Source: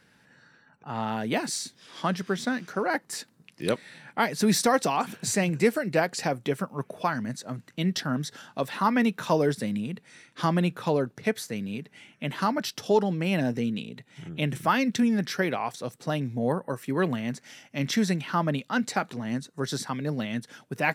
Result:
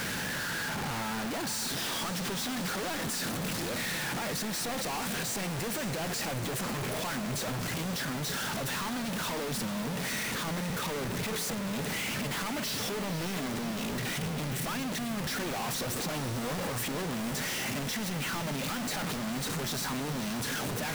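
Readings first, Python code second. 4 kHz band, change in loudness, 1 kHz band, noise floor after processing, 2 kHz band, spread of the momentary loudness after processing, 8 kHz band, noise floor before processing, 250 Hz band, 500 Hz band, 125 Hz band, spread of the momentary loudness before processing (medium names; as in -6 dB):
+2.0 dB, -4.5 dB, -6.5 dB, -34 dBFS, -2.0 dB, 2 LU, +1.5 dB, -63 dBFS, -7.0 dB, -8.5 dB, -4.0 dB, 12 LU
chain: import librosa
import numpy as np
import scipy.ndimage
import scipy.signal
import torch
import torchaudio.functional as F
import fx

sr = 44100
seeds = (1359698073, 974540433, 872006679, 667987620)

y = np.sign(x) * np.sqrt(np.mean(np.square(x)))
y = fx.echo_diffused(y, sr, ms=500, feedback_pct=68, wet_db=-10)
y = y * librosa.db_to_amplitude(-6.0)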